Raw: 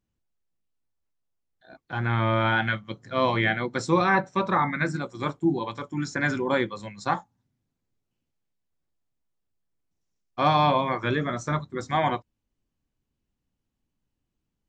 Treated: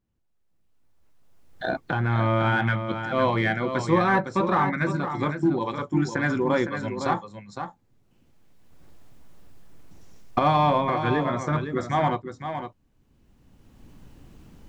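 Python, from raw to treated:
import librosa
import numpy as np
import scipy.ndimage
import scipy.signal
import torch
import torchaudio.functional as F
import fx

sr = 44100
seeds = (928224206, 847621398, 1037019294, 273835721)

p1 = fx.recorder_agc(x, sr, target_db=-17.5, rise_db_per_s=17.0, max_gain_db=30)
p2 = fx.high_shelf(p1, sr, hz=2200.0, db=-8.0)
p3 = np.clip(10.0 ** (22.5 / 20.0) * p2, -1.0, 1.0) / 10.0 ** (22.5 / 20.0)
p4 = p2 + F.gain(torch.from_numpy(p3), -10.5).numpy()
y = p4 + 10.0 ** (-8.5 / 20.0) * np.pad(p4, (int(509 * sr / 1000.0), 0))[:len(p4)]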